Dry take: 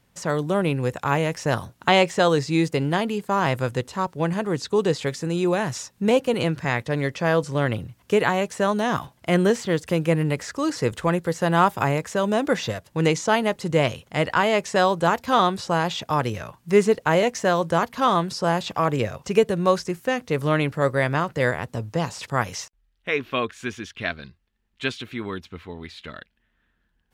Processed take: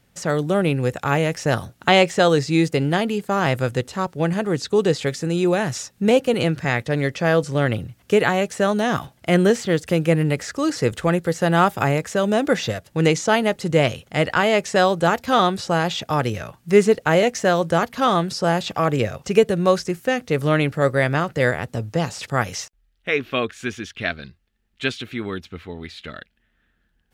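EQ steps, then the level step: peaking EQ 1 kHz -9.5 dB 0.21 oct; +3.0 dB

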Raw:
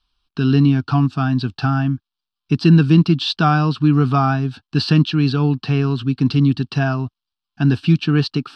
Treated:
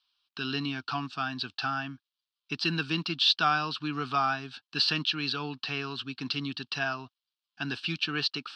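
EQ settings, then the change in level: band-pass filter 4.5 kHz, Q 0.82; treble shelf 4 kHz -9.5 dB; +4.0 dB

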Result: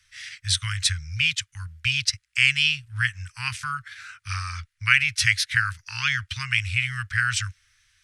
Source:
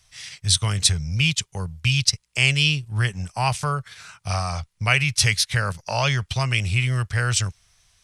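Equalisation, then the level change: elliptic band-stop 100–1600 Hz, stop band 50 dB; peaking EQ 170 Hz +9 dB 0.85 oct; peaking EQ 1.2 kHz +15 dB 2.7 oct; -7.5 dB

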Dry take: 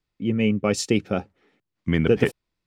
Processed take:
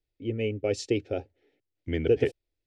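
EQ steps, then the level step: distance through air 81 m; bass shelf 500 Hz +4 dB; static phaser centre 460 Hz, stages 4; -4.5 dB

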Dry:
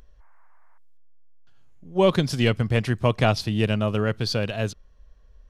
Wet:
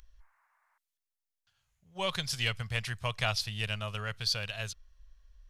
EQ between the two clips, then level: amplifier tone stack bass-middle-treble 10-0-10; 0.0 dB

